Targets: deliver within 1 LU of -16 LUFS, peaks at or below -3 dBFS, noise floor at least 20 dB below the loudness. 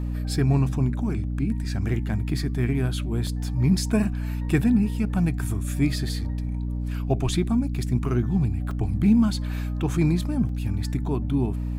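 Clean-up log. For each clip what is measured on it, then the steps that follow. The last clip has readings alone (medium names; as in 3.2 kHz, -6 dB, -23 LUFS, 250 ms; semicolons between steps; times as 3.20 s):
dropouts 3; longest dropout 2.7 ms; hum 60 Hz; highest harmonic 300 Hz; hum level -25 dBFS; loudness -25.0 LUFS; peak level -9.0 dBFS; loudness target -16.0 LUFS
-> interpolate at 3.27/8.71/10.49 s, 2.7 ms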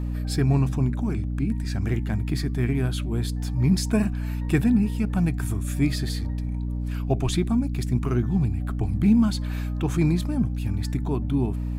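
dropouts 0; hum 60 Hz; highest harmonic 300 Hz; hum level -25 dBFS
-> hum notches 60/120/180/240/300 Hz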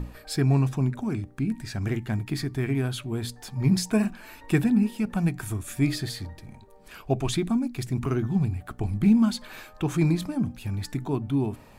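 hum not found; loudness -26.5 LUFS; peak level -10.0 dBFS; loudness target -16.0 LUFS
-> trim +10.5 dB; peak limiter -3 dBFS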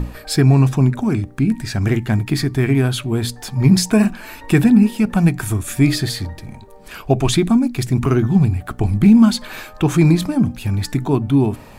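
loudness -16.5 LUFS; peak level -3.0 dBFS; noise floor -39 dBFS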